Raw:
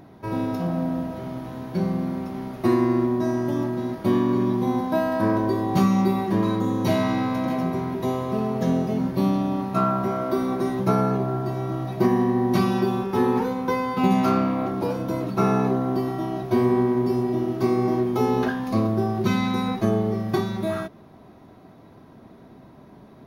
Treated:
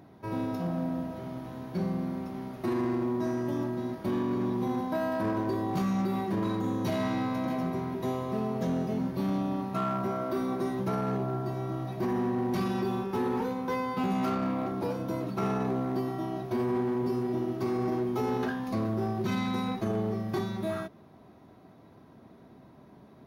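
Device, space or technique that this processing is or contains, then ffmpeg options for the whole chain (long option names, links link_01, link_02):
limiter into clipper: -af "alimiter=limit=-14.5dB:level=0:latency=1:release=20,asoftclip=type=hard:threshold=-18dB,highpass=48,volume=-6dB"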